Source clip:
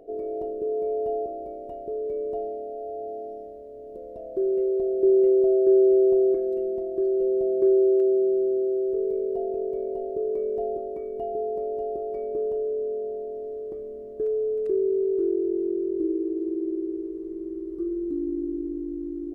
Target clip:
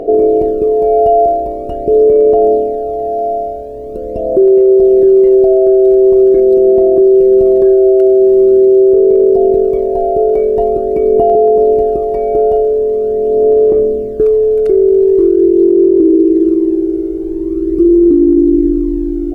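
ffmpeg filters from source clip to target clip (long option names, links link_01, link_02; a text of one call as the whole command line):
ffmpeg -i in.wav -af "aphaser=in_gain=1:out_gain=1:delay=1.4:decay=0.57:speed=0.44:type=sinusoidal,alimiter=level_in=20.5dB:limit=-1dB:release=50:level=0:latency=1,volume=-1dB" out.wav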